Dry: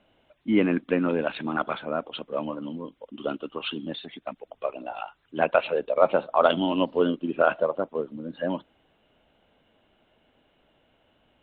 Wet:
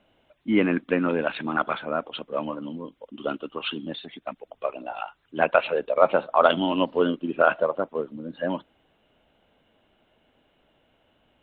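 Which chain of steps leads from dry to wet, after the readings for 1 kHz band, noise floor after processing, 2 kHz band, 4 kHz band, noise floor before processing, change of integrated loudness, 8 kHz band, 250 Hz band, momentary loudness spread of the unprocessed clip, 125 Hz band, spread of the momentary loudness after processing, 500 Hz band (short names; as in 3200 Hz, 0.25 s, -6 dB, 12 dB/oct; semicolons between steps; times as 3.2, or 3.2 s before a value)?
+2.5 dB, -67 dBFS, +3.5 dB, +1.5 dB, -67 dBFS, +1.0 dB, n/a, 0.0 dB, 14 LU, 0.0 dB, 15 LU, +1.0 dB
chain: dynamic EQ 1600 Hz, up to +4 dB, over -38 dBFS, Q 0.77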